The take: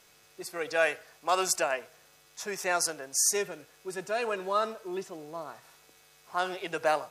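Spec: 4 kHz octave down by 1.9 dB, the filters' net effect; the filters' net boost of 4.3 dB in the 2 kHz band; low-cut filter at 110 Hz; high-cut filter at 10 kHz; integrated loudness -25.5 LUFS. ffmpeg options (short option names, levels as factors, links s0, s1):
-af "highpass=110,lowpass=10000,equalizer=f=2000:t=o:g=7,equalizer=f=4000:t=o:g=-5,volume=1.58"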